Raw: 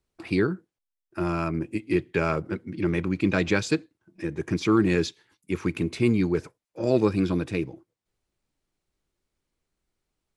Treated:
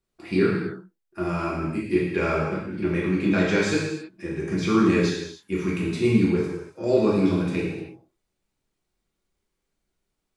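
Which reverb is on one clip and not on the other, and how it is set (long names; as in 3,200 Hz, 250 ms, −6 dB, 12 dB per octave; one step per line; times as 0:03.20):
reverb whose tail is shaped and stops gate 350 ms falling, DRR −5.5 dB
level −4.5 dB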